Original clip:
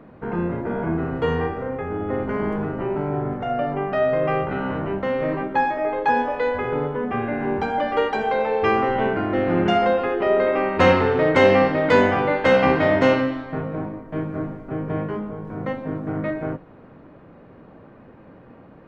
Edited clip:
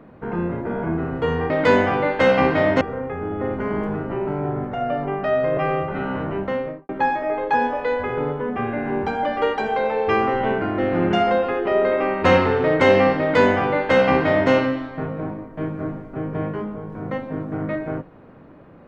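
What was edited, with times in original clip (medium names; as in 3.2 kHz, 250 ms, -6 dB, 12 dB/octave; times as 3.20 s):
4.26–4.54 s: stretch 1.5×
5.04–5.44 s: studio fade out
11.75–13.06 s: copy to 1.50 s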